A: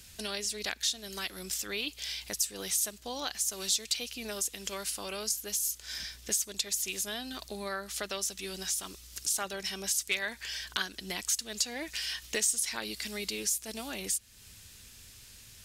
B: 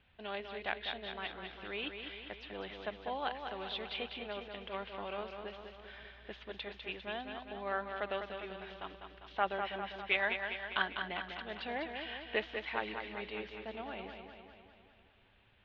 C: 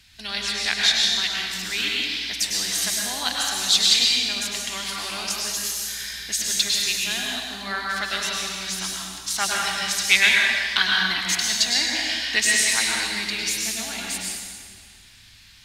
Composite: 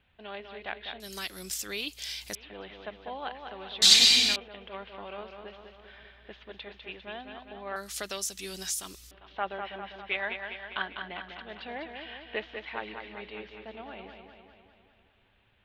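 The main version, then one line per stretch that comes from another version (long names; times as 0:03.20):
B
0:01.00–0:02.35: punch in from A
0:03.82–0:04.36: punch in from C
0:07.76–0:09.11: punch in from A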